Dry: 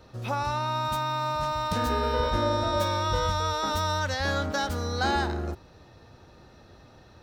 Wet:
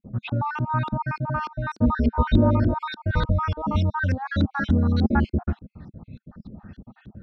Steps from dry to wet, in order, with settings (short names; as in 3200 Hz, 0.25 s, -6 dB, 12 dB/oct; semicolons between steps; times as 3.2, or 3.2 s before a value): random spectral dropouts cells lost 50%; resonant low shelf 290 Hz +10 dB, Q 1.5; LFO low-pass saw up 3.4 Hz 310–3900 Hz; dynamic EQ 190 Hz, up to -4 dB, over -40 dBFS, Q 2.5; small resonant body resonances 210/1500 Hz, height 8 dB, ringing for 35 ms